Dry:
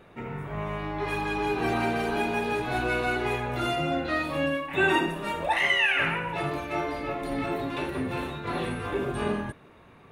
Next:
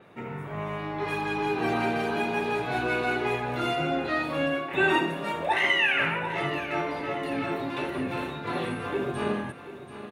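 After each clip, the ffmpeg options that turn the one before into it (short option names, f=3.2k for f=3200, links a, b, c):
-af "highpass=110,aecho=1:1:734|1468|2202|2936|3670:0.211|0.106|0.0528|0.0264|0.0132,adynamicequalizer=threshold=0.00447:dfrequency=6100:dqfactor=0.7:tfrequency=6100:tqfactor=0.7:attack=5:release=100:ratio=0.375:range=2.5:mode=cutabove:tftype=highshelf"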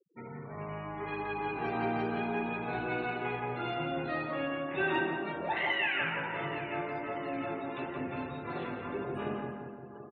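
-filter_complex "[0:a]afftfilt=real='re*gte(hypot(re,im),0.0141)':imag='im*gte(hypot(re,im),0.0141)':win_size=1024:overlap=0.75,lowpass=3.8k,asplit=2[a][b];[b]adelay=172,lowpass=f=2.3k:p=1,volume=-4dB,asplit=2[c][d];[d]adelay=172,lowpass=f=2.3k:p=1,volume=0.5,asplit=2[e][f];[f]adelay=172,lowpass=f=2.3k:p=1,volume=0.5,asplit=2[g][h];[h]adelay=172,lowpass=f=2.3k:p=1,volume=0.5,asplit=2[i][j];[j]adelay=172,lowpass=f=2.3k:p=1,volume=0.5,asplit=2[k][l];[l]adelay=172,lowpass=f=2.3k:p=1,volume=0.5[m];[a][c][e][g][i][k][m]amix=inputs=7:normalize=0,volume=-8dB"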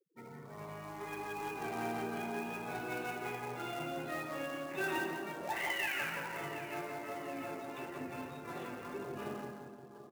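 -filter_complex "[0:a]flanger=delay=4.9:depth=4.2:regen=-79:speed=1.9:shape=sinusoidal,lowshelf=f=120:g=-6,acrossover=split=630[a][b];[b]acrusher=bits=2:mode=log:mix=0:aa=0.000001[c];[a][c]amix=inputs=2:normalize=0,volume=-1dB"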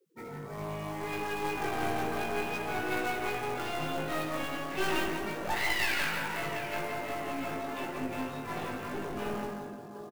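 -filter_complex "[0:a]aeval=exprs='clip(val(0),-1,0.00473)':c=same,asplit=2[a][b];[b]adelay=19,volume=-2.5dB[c];[a][c]amix=inputs=2:normalize=0,volume=7dB"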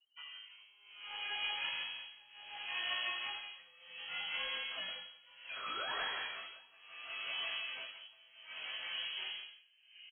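-af "alimiter=limit=-20.5dB:level=0:latency=1:release=188,tremolo=f=0.67:d=0.94,lowpass=f=2.8k:t=q:w=0.5098,lowpass=f=2.8k:t=q:w=0.6013,lowpass=f=2.8k:t=q:w=0.9,lowpass=f=2.8k:t=q:w=2.563,afreqshift=-3300,volume=-4.5dB"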